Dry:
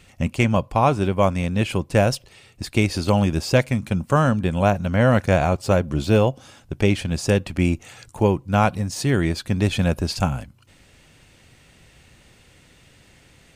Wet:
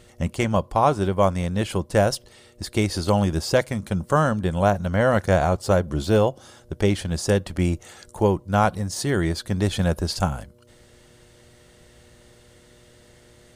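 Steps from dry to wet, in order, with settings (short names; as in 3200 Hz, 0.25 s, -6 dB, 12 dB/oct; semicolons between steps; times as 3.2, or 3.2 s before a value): buzz 120 Hz, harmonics 5, -52 dBFS -4 dB/oct; thirty-one-band EQ 125 Hz -9 dB, 250 Hz -7 dB, 2500 Hz -10 dB, 10000 Hz +3 dB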